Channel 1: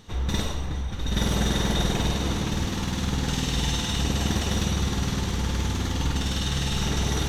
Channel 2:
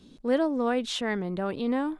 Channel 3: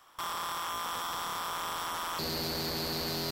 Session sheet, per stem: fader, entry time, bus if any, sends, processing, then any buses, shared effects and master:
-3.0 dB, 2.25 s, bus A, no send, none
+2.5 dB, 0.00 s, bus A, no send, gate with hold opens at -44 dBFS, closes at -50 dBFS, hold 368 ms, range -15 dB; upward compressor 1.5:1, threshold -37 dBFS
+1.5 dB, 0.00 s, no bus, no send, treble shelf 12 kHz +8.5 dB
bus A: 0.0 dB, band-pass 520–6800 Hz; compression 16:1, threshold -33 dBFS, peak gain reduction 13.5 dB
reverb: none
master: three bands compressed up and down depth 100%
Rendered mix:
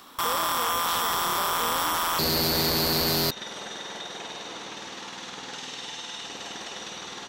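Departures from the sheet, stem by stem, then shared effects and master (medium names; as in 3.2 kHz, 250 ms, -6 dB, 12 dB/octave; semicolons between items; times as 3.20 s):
stem 2: missing gate with hold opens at -44 dBFS, closes at -50 dBFS, hold 368 ms, range -15 dB; stem 3 +1.5 dB -> +9.0 dB; master: missing three bands compressed up and down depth 100%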